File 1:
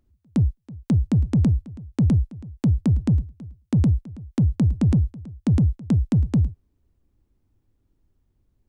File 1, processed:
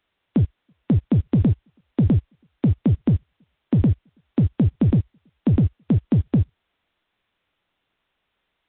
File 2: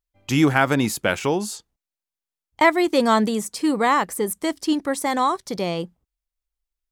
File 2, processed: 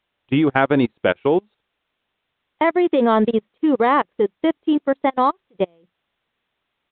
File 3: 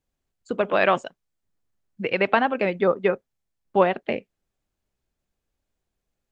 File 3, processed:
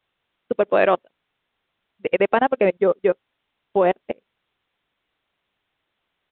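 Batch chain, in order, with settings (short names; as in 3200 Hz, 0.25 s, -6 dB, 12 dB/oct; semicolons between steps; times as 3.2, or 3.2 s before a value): bell 430 Hz +8.5 dB 1.8 oct; level quantiser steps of 17 dB; requantised 8-bit, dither triangular; downsampling 8000 Hz; upward expander 2.5:1, over -32 dBFS; gain +3 dB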